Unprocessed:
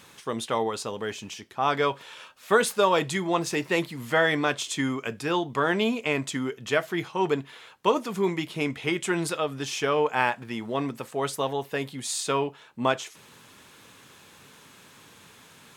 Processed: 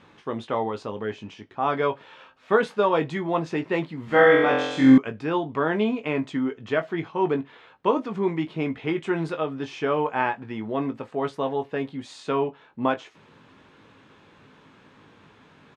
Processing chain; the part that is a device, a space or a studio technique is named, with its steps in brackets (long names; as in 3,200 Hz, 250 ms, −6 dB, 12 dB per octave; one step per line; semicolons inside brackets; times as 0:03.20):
double-tracking delay 19 ms −7.5 dB
0:04.05–0:04.98: flutter between parallel walls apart 3.9 metres, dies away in 0.96 s
phone in a pocket (low-pass filter 3,700 Hz 12 dB per octave; parametric band 290 Hz +3.5 dB 0.38 octaves; high-shelf EQ 2,000 Hz −9 dB)
level +1 dB